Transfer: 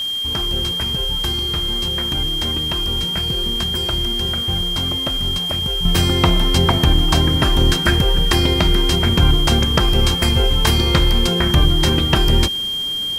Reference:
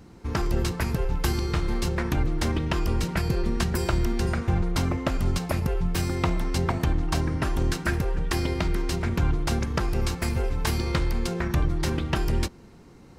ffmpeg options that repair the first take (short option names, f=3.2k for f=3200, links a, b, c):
-af "adeclick=t=4,bandreject=f=3.2k:w=30,afwtdn=0.011,asetnsamples=n=441:p=0,asendcmd='5.85 volume volume -9.5dB',volume=0dB"